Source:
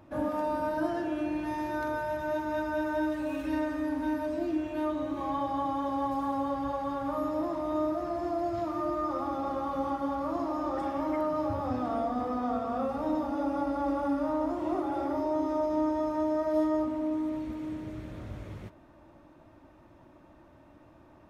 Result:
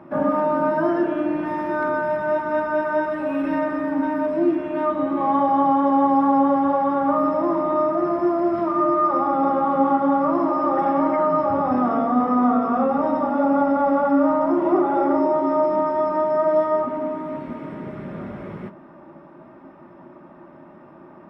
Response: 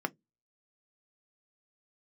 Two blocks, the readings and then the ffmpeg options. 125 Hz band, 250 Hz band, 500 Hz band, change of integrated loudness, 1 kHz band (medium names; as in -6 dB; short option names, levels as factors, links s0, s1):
+6.0 dB, +9.5 dB, +11.0 dB, +11.0 dB, +12.5 dB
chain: -filter_complex "[0:a]highshelf=f=5300:g=-12[s0];[1:a]atrim=start_sample=2205[s1];[s0][s1]afir=irnorm=-1:irlink=0,volume=2"